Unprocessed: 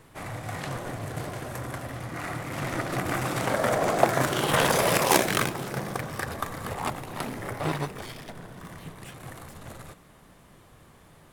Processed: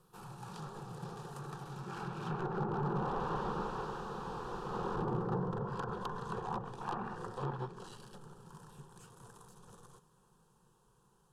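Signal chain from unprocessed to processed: Doppler pass-by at 4.21, 42 m/s, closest 16 m; spectral gain 6.81–7.16, 590–2900 Hz +8 dB; wrapped overs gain 33 dB; fixed phaser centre 420 Hz, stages 8; treble ducked by the level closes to 1000 Hz, closed at -42.5 dBFS; gain +11.5 dB

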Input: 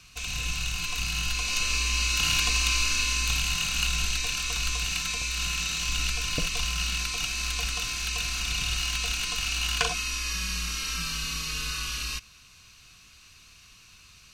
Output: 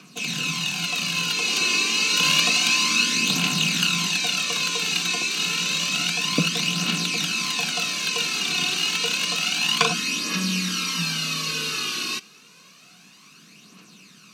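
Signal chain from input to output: steep high-pass 170 Hz 48 dB/oct; tilt shelf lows +7.5 dB, about 660 Hz; phaser 0.29 Hz, delay 2.8 ms, feedback 48%; dynamic EQ 3600 Hz, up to +5 dB, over -47 dBFS, Q 1.3; gain +8.5 dB

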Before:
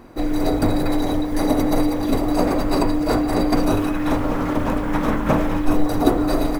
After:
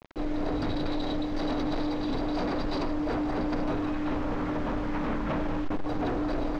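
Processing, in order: 0.55–2.89 bell 4200 Hz +10.5 dB 0.91 oct; hard clip -19.5 dBFS, distortion -8 dB; de-hum 95.82 Hz, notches 3; bit-crush 6-bit; air absorption 200 m; gain -6 dB

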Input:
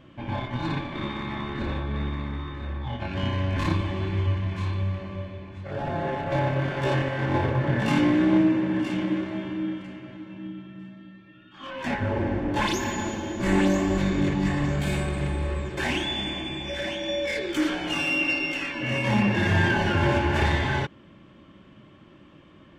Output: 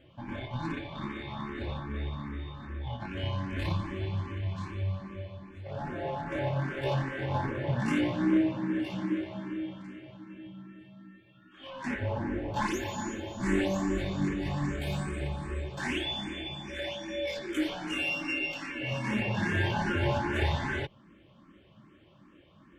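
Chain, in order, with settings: endless phaser +2.5 Hz; gain -3.5 dB

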